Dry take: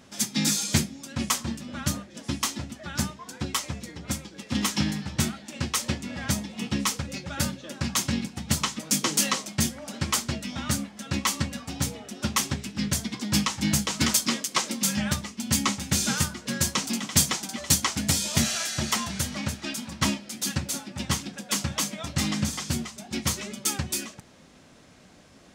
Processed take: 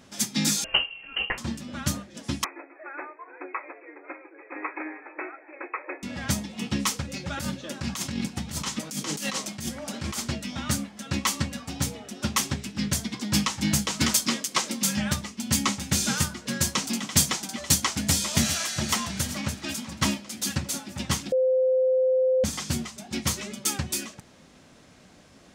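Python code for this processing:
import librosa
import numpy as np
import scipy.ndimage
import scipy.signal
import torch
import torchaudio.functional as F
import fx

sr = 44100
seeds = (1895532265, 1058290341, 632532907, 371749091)

y = fx.freq_invert(x, sr, carrier_hz=3000, at=(0.64, 1.38))
y = fx.brickwall_bandpass(y, sr, low_hz=290.0, high_hz=2600.0, at=(2.44, 6.03))
y = fx.over_compress(y, sr, threshold_db=-30.0, ratio=-1.0, at=(7.19, 10.28), fade=0.02)
y = fx.echo_throw(y, sr, start_s=17.66, length_s=0.47, ms=400, feedback_pct=70, wet_db=-10.5)
y = fx.edit(y, sr, fx.bleep(start_s=21.32, length_s=1.12, hz=517.0, db=-18.5), tone=tone)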